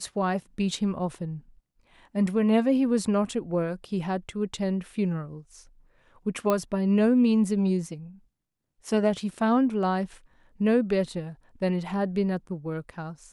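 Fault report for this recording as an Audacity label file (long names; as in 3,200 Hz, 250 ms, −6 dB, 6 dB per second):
6.500000	6.500000	click −12 dBFS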